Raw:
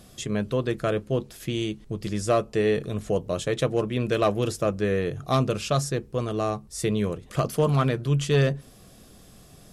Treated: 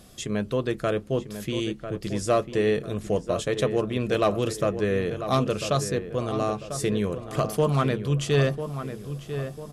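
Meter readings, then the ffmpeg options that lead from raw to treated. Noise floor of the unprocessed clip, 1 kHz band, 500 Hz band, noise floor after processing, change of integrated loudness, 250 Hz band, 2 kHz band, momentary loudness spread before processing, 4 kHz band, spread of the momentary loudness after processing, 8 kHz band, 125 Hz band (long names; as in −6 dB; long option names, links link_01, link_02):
−51 dBFS, +0.5 dB, +0.5 dB, −44 dBFS, −0.5 dB, 0.0 dB, +0.5 dB, 7 LU, 0.0 dB, 8 LU, 0.0 dB, −1.5 dB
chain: -filter_complex "[0:a]equalizer=frequency=120:width=1.5:gain=-2.5,asplit=2[link_01][link_02];[link_02]adelay=996,lowpass=frequency=2100:poles=1,volume=-9.5dB,asplit=2[link_03][link_04];[link_04]adelay=996,lowpass=frequency=2100:poles=1,volume=0.44,asplit=2[link_05][link_06];[link_06]adelay=996,lowpass=frequency=2100:poles=1,volume=0.44,asplit=2[link_07][link_08];[link_08]adelay=996,lowpass=frequency=2100:poles=1,volume=0.44,asplit=2[link_09][link_10];[link_10]adelay=996,lowpass=frequency=2100:poles=1,volume=0.44[link_11];[link_03][link_05][link_07][link_09][link_11]amix=inputs=5:normalize=0[link_12];[link_01][link_12]amix=inputs=2:normalize=0"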